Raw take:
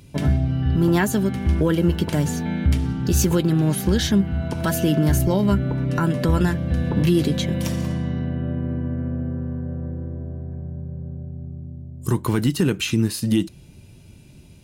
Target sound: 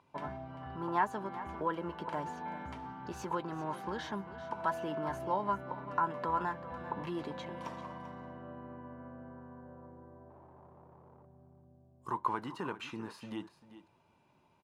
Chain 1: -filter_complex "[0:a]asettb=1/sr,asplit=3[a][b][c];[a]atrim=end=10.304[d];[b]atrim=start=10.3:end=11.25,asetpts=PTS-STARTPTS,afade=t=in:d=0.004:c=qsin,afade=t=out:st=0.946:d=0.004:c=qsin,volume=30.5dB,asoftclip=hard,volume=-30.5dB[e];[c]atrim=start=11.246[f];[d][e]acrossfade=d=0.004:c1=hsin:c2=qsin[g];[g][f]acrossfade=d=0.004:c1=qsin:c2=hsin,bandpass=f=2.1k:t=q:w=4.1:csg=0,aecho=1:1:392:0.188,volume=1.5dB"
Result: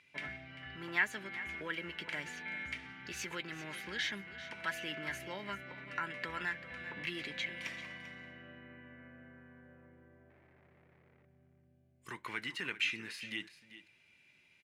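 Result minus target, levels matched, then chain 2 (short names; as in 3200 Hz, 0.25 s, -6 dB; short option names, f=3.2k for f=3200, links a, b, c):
1000 Hz band -11.5 dB
-filter_complex "[0:a]asettb=1/sr,asplit=3[a][b][c];[a]atrim=end=10.304[d];[b]atrim=start=10.3:end=11.25,asetpts=PTS-STARTPTS,afade=t=in:d=0.004:c=qsin,afade=t=out:st=0.946:d=0.004:c=qsin,volume=30.5dB,asoftclip=hard,volume=-30.5dB[e];[c]atrim=start=11.246[f];[d][e]acrossfade=d=0.004:c1=hsin:c2=qsin[g];[g][f]acrossfade=d=0.004:c1=qsin:c2=hsin,bandpass=f=980:t=q:w=4.1:csg=0,aecho=1:1:392:0.188,volume=1.5dB"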